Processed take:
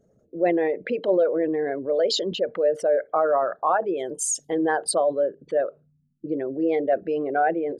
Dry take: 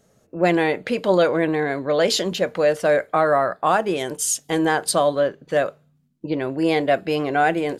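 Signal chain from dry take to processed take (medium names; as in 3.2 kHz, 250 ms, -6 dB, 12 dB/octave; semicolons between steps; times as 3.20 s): resonances exaggerated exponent 2; trim -3 dB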